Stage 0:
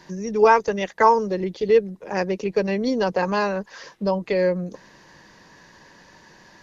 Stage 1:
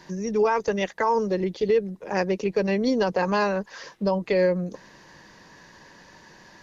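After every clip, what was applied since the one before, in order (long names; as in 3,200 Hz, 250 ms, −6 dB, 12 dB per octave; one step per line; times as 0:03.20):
brickwall limiter −13 dBFS, peak gain reduction 10 dB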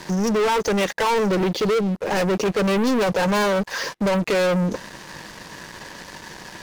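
leveller curve on the samples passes 5
level −4 dB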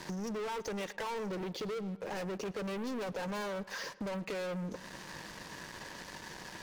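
downward compressor 6 to 1, threshold −30 dBFS, peak gain reduction 10.5 dB
feedback echo with a low-pass in the loop 110 ms, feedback 63%, low-pass 3,800 Hz, level −20 dB
level −8 dB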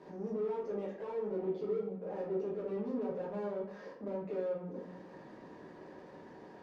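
brickwall limiter −37 dBFS, peak gain reduction 6.5 dB
resonant band-pass 380 Hz, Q 1.4
rectangular room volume 64 cubic metres, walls mixed, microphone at 1.3 metres
level −1.5 dB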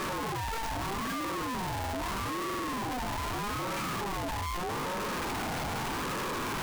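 sign of each sample alone
buffer that repeats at 0:01.56/0:02.45, samples 2,048, times 7
ring modulator whose carrier an LFO sweeps 600 Hz, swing 25%, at 0.8 Hz
level +8.5 dB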